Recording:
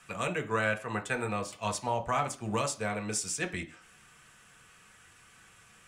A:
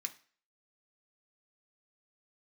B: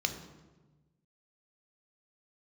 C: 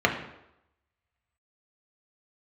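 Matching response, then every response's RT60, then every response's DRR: A; 0.40, 1.2, 0.85 seconds; 3.5, 6.0, 0.5 decibels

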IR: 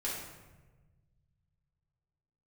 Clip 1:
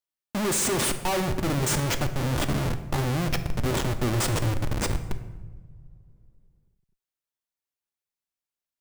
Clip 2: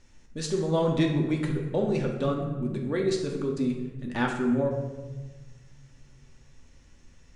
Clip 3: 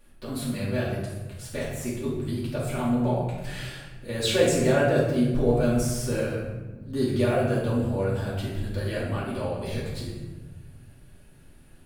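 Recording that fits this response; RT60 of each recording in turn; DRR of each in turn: 3; non-exponential decay, 1.3 s, 1.2 s; 8.0, 0.0, −7.5 decibels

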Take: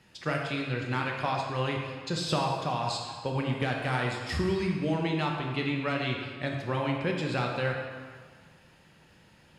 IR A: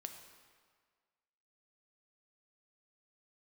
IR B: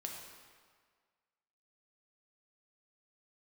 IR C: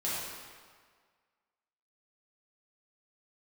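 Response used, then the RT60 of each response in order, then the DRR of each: B; 1.7, 1.7, 1.7 seconds; 5.0, 0.0, −9.5 decibels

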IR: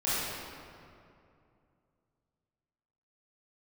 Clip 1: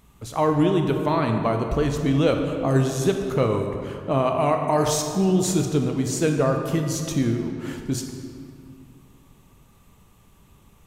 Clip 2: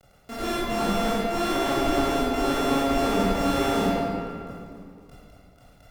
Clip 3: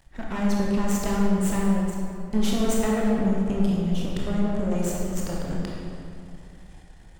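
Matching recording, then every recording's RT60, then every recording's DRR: 2; 2.6, 2.5, 2.5 seconds; 3.5, −12.0, −3.5 decibels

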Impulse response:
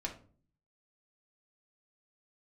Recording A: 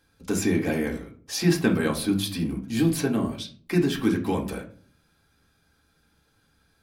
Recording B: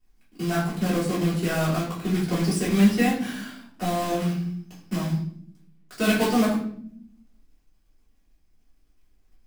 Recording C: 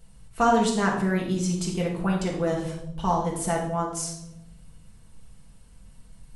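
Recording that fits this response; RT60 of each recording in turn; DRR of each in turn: A; 0.45 s, 0.65 s, non-exponential decay; −2.0, −10.0, −3.5 decibels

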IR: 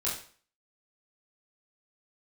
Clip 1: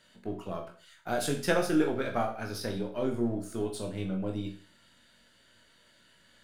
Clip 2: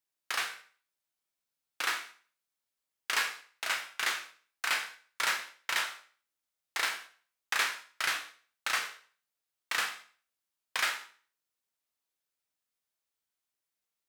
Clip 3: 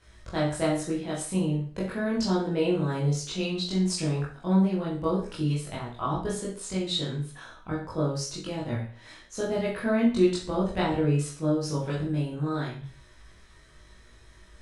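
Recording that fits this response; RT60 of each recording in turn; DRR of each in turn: 3; 0.45, 0.45, 0.45 seconds; 2.0, 6.0, −7.0 decibels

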